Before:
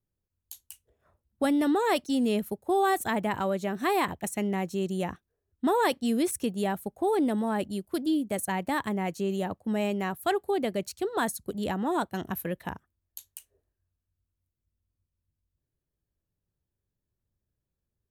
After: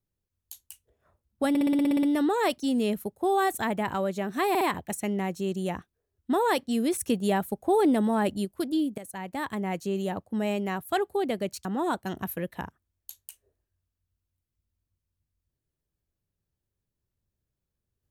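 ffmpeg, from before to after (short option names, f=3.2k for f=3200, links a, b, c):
-filter_complex "[0:a]asplit=16[a][b][c][d][e][f][g][h][i][j][k][l][m][n][o][p];[a]atrim=end=1.552[q];[b]atrim=start=1.488:end=1.552[r];[c]atrim=start=1.488:end=1.552[s];[d]atrim=start=1.488:end=1.552[t];[e]atrim=start=1.488:end=1.552[u];[f]atrim=start=1.488:end=1.552[v];[g]atrim=start=1.488:end=1.552[w];[h]atrim=start=1.488:end=1.552[x];[i]atrim=start=1.488:end=1.552[y];[j]atrim=start=1.488:end=4.012[z];[k]atrim=start=3.948:end=4.012[aa];[l]atrim=start=3.948:end=6.352[ab];[m]atrim=start=6.348:end=7.792,asetpts=PTS-STARTPTS,volume=3.5dB[ac];[n]atrim=start=7.788:end=8.32,asetpts=PTS-STARTPTS,afade=t=out:st=0.528:d=0.004:c=hsin:silence=0.211349[ad];[o]atrim=start=8.32:end=10.992,asetpts=PTS-STARTPTS,afade=t=in:d=0.74:silence=0.211349[ae];[p]atrim=start=11.728[af];[q][r]acrossfade=d=0.004:c1=hsin:c2=hsin[ag];[ag][s]acrossfade=d=0.004:c1=hsin:c2=hsin[ah];[ah][t]acrossfade=d=0.004:c1=hsin:c2=hsin[ai];[ai][u]acrossfade=d=0.004:c1=hsin:c2=hsin[aj];[aj][v]acrossfade=d=0.004:c1=hsin:c2=hsin[ak];[ak][w]acrossfade=d=0.004:c1=hsin:c2=hsin[al];[al][x]acrossfade=d=0.004:c1=hsin:c2=hsin[am];[am][y]acrossfade=d=0.004:c1=hsin:c2=hsin[an];[an][z]acrossfade=d=0.004:c1=hsin:c2=hsin[ao];[ao][aa]acrossfade=d=0.004:c1=hsin:c2=hsin[ap];[ap][ab]acrossfade=d=0.004:c1=hsin:c2=hsin[aq];[aq][ac]acrossfade=d=0.004:c1=hsin:c2=hsin[ar];[ad][ae]concat=n=2:v=0:a=1[as];[ar][as]acrossfade=d=0.004:c1=hsin:c2=hsin[at];[at][af]acrossfade=d=0.004:c1=hsin:c2=hsin"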